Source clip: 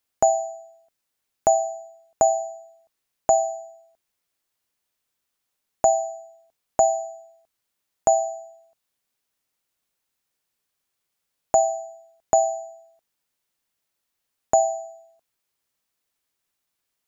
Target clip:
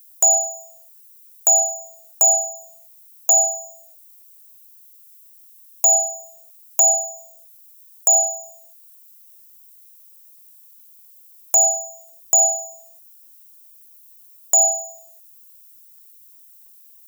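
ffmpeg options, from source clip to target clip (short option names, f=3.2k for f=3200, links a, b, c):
-af "crystalizer=i=7.5:c=0,apsyclip=10dB,aemphasis=mode=production:type=50kf,volume=-14.5dB"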